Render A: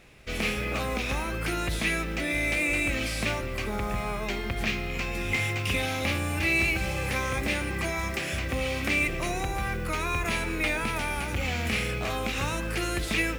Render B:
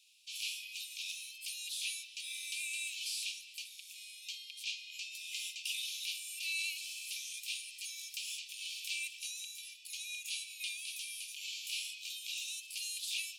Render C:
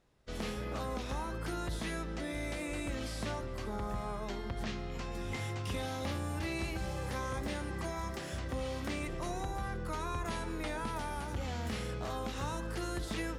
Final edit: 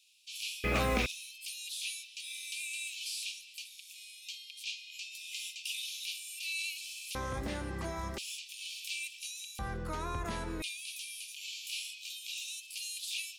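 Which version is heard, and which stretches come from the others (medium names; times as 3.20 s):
B
0.64–1.06 s: from A
7.15–8.18 s: from C
9.59–10.62 s: from C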